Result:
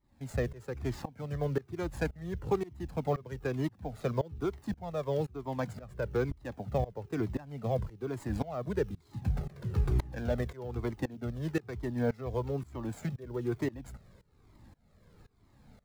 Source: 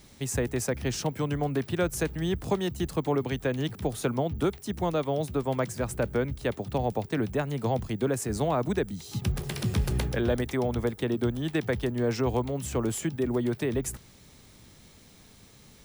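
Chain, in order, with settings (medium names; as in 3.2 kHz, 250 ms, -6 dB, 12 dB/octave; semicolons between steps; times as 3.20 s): median filter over 15 samples; tremolo saw up 1.9 Hz, depth 95%; Shepard-style flanger falling 1.1 Hz; trim +4 dB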